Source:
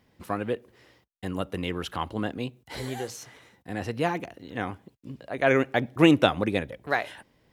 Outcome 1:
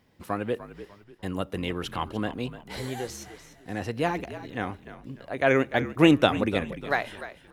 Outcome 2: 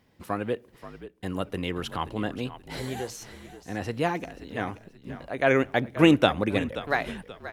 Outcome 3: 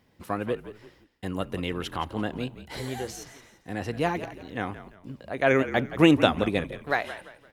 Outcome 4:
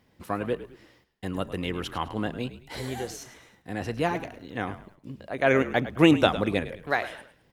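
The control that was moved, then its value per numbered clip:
frequency-shifting echo, time: 297 ms, 530 ms, 171 ms, 105 ms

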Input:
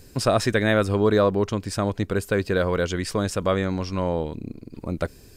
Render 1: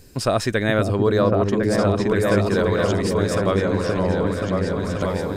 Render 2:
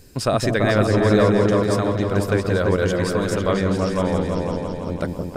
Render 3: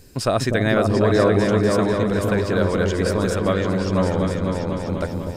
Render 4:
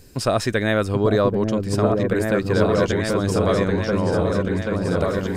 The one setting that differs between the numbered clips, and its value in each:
delay with an opening low-pass, time: 527 ms, 167 ms, 247 ms, 784 ms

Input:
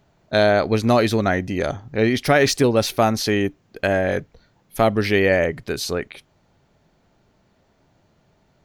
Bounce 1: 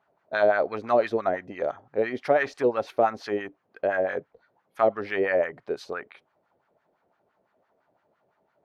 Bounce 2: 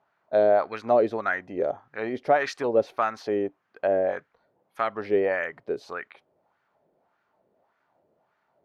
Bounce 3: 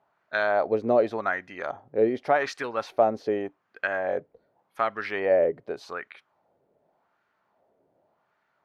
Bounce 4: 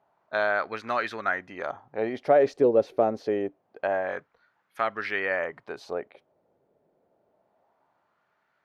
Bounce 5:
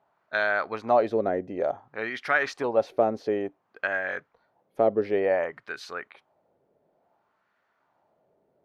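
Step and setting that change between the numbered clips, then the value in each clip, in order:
wah-wah, rate: 5.9 Hz, 1.7 Hz, 0.86 Hz, 0.26 Hz, 0.56 Hz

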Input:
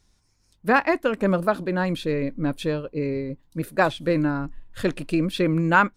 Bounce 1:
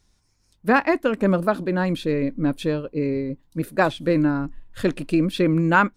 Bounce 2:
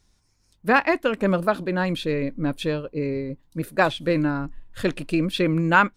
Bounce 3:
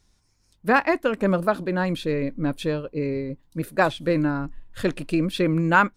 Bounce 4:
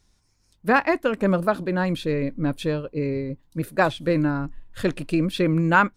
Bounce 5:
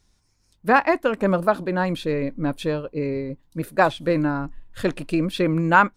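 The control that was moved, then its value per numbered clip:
dynamic bell, frequency: 260 Hz, 3 kHz, 9.7 kHz, 100 Hz, 850 Hz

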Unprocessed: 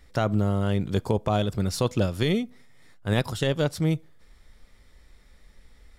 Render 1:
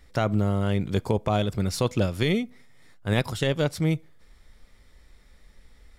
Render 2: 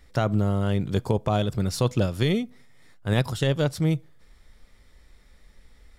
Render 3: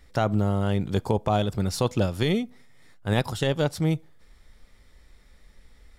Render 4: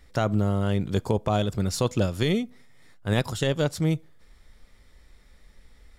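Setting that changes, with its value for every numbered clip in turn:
dynamic bell, frequency: 2.2 kHz, 130 Hz, 820 Hz, 7 kHz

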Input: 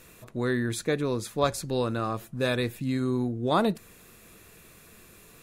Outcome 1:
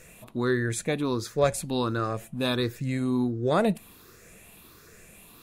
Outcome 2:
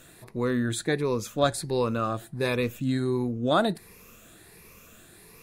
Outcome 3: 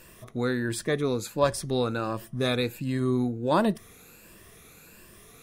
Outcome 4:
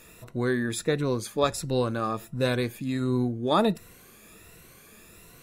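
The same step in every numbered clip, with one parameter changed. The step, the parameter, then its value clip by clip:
drifting ripple filter, ripples per octave: 0.53, 0.84, 1.3, 2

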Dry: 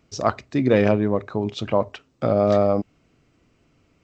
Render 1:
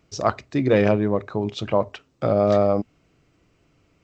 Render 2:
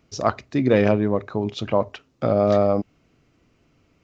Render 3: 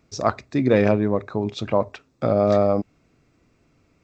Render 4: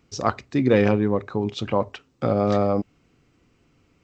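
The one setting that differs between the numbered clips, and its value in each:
band-stop, frequency: 240 Hz, 7.8 kHz, 3 kHz, 630 Hz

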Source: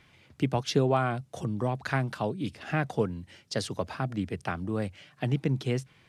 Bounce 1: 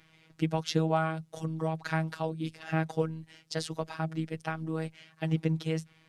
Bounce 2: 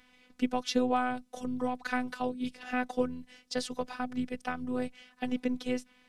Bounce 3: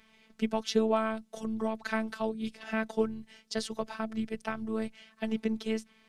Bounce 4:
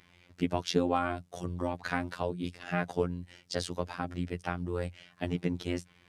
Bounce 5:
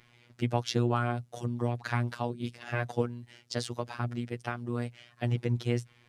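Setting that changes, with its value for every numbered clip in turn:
robot voice, frequency: 160 Hz, 250 Hz, 220 Hz, 88 Hz, 120 Hz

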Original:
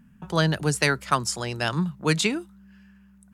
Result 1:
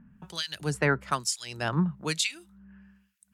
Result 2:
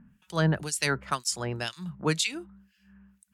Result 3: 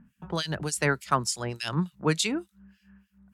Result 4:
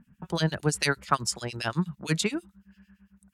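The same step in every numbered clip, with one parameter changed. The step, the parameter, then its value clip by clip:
harmonic tremolo, rate: 1.1 Hz, 2 Hz, 3.4 Hz, 8.9 Hz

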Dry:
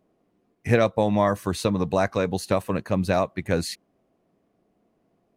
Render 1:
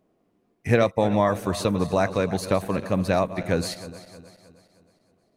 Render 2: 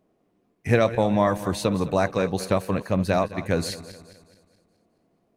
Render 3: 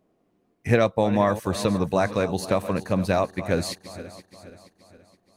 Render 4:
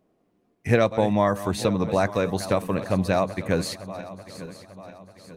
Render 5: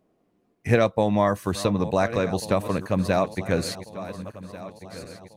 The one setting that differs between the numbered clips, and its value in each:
backward echo that repeats, time: 156 ms, 106 ms, 237 ms, 446 ms, 721 ms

